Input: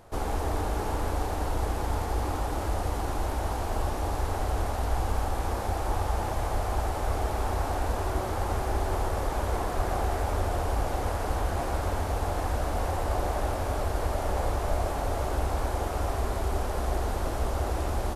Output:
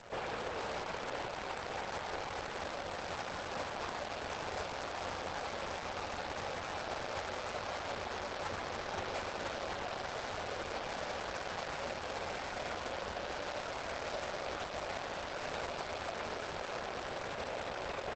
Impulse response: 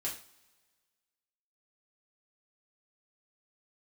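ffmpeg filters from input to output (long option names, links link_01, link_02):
-filter_complex "[0:a]highpass=130,equalizer=frequency=300:width_type=q:width=4:gain=-10,equalizer=frequency=540:width_type=q:width=4:gain=6,equalizer=frequency=1500:width_type=q:width=4:gain=5,equalizer=frequency=2900:width_type=q:width=4:gain=-7,lowpass=frequency=3400:width=0.5412,lowpass=frequency=3400:width=1.3066,acrossover=split=300|1400[link_01][link_02][link_03];[link_01]acompressor=threshold=-48dB:ratio=4[link_04];[link_02]acompressor=threshold=-34dB:ratio=4[link_05];[link_03]acompressor=threshold=-45dB:ratio=4[link_06];[link_04][link_05][link_06]amix=inputs=3:normalize=0,asplit=2[link_07][link_08];[link_08]adelay=48,volume=-5dB[link_09];[link_07][link_09]amix=inputs=2:normalize=0,dynaudnorm=framelen=980:gausssize=7:maxgain=4.5dB,asettb=1/sr,asplit=3[link_10][link_11][link_12];[link_10]atrim=end=1.474[link_13];[link_11]atrim=start=1.47:end=3.56,asetpts=PTS-STARTPTS,afade=type=in:duration=0.004:curve=qsin,afade=type=out:start_time=2.086:duration=0.004:curve=qsin,volume=26.5dB,asoftclip=hard,volume=-26.5dB[link_14];[link_12]atrim=start=3.556[link_15];[link_13][link_14]acrossfade=duration=0.004:curve1=hsin:curve2=qsin[link_16];[link_16][link_15]acrossfade=duration=0.004:curve1=qsin:curve2=hsin,equalizer=frequency=2500:width=2.5:gain=11,aecho=1:1:147|635|899:0.668|0.133|0.237,acrusher=bits=9:dc=4:mix=0:aa=0.000001,alimiter=limit=-24dB:level=0:latency=1:release=17,aeval=exprs='0.0631*(cos(1*acos(clip(val(0)/0.0631,-1,1)))-cos(1*PI/2))+0.00447*(cos(2*acos(clip(val(0)/0.0631,-1,1)))-cos(2*PI/2))+0.0141*(cos(3*acos(clip(val(0)/0.0631,-1,1)))-cos(3*PI/2))+0.0224*(cos(5*acos(clip(val(0)/0.0631,-1,1)))-cos(5*PI/2))+0.000891*(cos(7*acos(clip(val(0)/0.0631,-1,1)))-cos(7*PI/2))':channel_layout=same,volume=-4.5dB" -ar 48000 -c:a libopus -b:a 12k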